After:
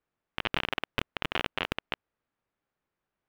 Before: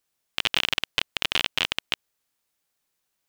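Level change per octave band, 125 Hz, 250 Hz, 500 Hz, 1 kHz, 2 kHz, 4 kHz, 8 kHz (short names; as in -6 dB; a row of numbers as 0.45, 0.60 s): +3.0, +3.0, +1.5, -0.5, -5.5, -11.5, -16.5 dB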